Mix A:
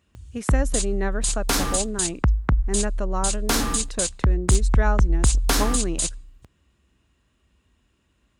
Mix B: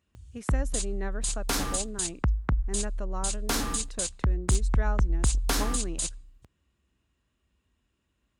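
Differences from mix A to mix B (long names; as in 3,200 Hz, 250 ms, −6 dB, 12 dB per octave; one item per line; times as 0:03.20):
speech −9.0 dB
background −6.0 dB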